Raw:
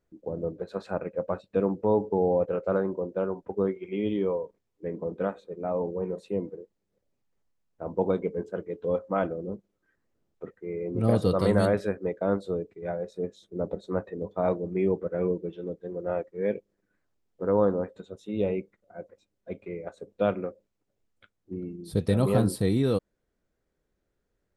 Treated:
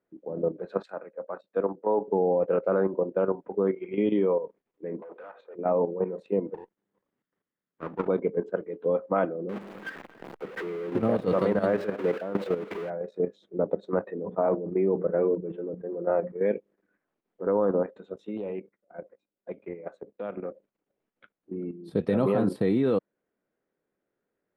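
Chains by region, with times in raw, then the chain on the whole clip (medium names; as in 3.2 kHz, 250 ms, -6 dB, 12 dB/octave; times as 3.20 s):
0.83–2.08 s: high-pass 660 Hz 6 dB/octave + peaking EQ 2.6 kHz -10.5 dB 0.48 oct + three bands expanded up and down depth 100%
5.02–5.55 s: high-pass 840 Hz + compression 16:1, threshold -42 dBFS + overdrive pedal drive 19 dB, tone 1.1 kHz, clips at -34.5 dBFS
6.54–8.08 s: comb filter that takes the minimum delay 0.6 ms + compression 1.5:1, threshold -35 dBFS
9.49–12.90 s: jump at every zero crossing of -31.5 dBFS + tremolo saw down 2.8 Hz, depth 70% + delay 261 ms -18.5 dB
14.22–16.42 s: low-pass 1.6 kHz + hum notches 60/120/180/240 Hz + decay stretcher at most 130 dB/s
18.37–20.45 s: gate -56 dBFS, range -9 dB + compression 2.5:1, threshold -37 dBFS + loudspeaker Doppler distortion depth 0.11 ms
whole clip: three-band isolator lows -24 dB, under 160 Hz, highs -20 dB, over 2.9 kHz; level held to a coarse grid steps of 10 dB; trim +7 dB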